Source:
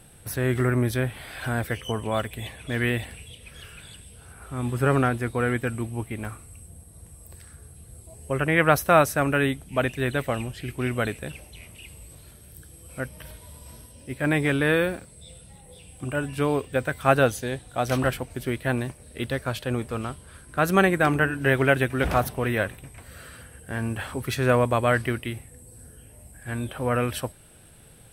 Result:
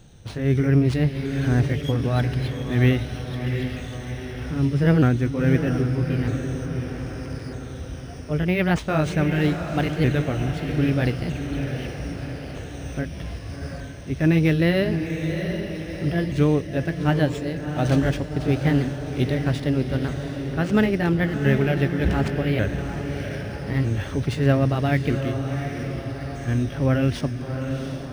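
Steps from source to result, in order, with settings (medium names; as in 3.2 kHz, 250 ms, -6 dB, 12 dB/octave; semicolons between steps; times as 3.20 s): sawtooth pitch modulation +3 st, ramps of 1255 ms; bass shelf 470 Hz +9 dB; level rider gain up to 7.5 dB; echo that smears into a reverb 730 ms, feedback 49%, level -7 dB; dynamic bell 930 Hz, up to -8 dB, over -33 dBFS, Q 0.74; decimation joined by straight lines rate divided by 3×; trim -4 dB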